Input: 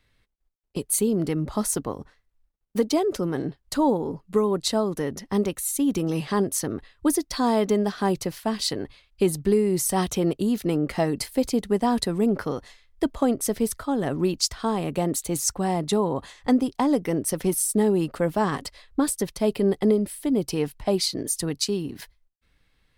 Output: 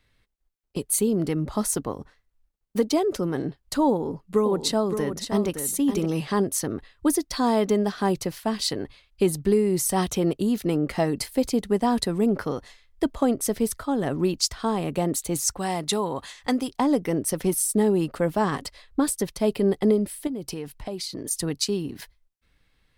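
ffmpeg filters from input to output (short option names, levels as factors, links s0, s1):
-filter_complex "[0:a]asettb=1/sr,asplit=3[s0][s1][s2];[s0]atrim=end=3.894[s3];[s1]atrim=start=3.89:end=6.06,asetpts=PTS-STARTPTS,afade=t=in:d=0.004:c=qsin,afade=t=out:st=2.166:d=0.004:c=qsin,aecho=1:1:567:0.398,atrim=end_sample=95697[s4];[s2]atrim=start=6.056[s5];[s3][s4]acrossfade=d=0.004:c1=hsin:c2=qsin[s6];[s6][s5]acrossfade=d=0.004:c1=qsin:c2=hsin,asettb=1/sr,asplit=3[s7][s8][s9];[s7]atrim=end=15.584[s10];[s8]atrim=start=15.58:end=16.71,asetpts=PTS-STARTPTS,afade=t=in:d=0.004:c=qsin,afade=t=out:st=1.126:d=0.004:c=qsin,tiltshelf=f=970:g=-5.5[s11];[s9]atrim=start=16.706[s12];[s10][s11]acrossfade=d=0.004:c1=hsin:c2=qsin[s13];[s13][s12]acrossfade=d=0.004:c1=qsin:c2=hsin,asettb=1/sr,asplit=3[s14][s15][s16];[s14]atrim=end=20.274[s17];[s15]atrim=start=20.27:end=21.31,asetpts=PTS-STARTPTS,afade=t=in:d=0.004:c=qsin,afade=t=out:st=1.036:d=0.004:c=qsin,acompressor=threshold=0.0355:ratio=5:attack=3.2:release=140:knee=1:detection=peak[s18];[s16]atrim=start=21.306[s19];[s17][s18]acrossfade=d=0.004:c1=hsin:c2=qsin[s20];[s20][s19]acrossfade=d=0.004:c1=qsin:c2=hsin"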